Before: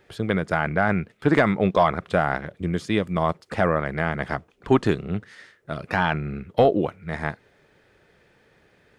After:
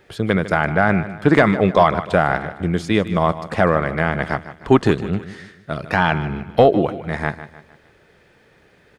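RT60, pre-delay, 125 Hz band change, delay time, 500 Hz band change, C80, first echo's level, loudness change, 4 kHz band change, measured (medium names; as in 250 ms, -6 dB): no reverb, no reverb, +5.0 dB, 152 ms, +5.0 dB, no reverb, -14.0 dB, +5.0 dB, +5.0 dB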